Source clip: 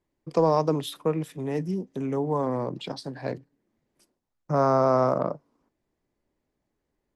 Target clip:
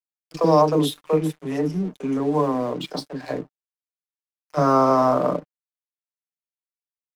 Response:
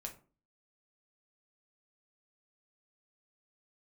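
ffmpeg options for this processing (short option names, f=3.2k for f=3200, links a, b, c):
-filter_complex "[0:a]highpass=f=170:w=0.5412,highpass=f=170:w=1.3066,bandreject=f=870:w=12,acrossover=split=470|1900[a][b][c];[b]adelay=40[d];[a]adelay=70[e];[e][d][c]amix=inputs=3:normalize=0,asplit=2[f][g];[1:a]atrim=start_sample=2205[h];[g][h]afir=irnorm=-1:irlink=0,volume=-15.5dB[i];[f][i]amix=inputs=2:normalize=0,aeval=exprs='sgn(val(0))*max(abs(val(0))-0.00355,0)':c=same,aecho=1:1:6.7:0.4,volume=6dB"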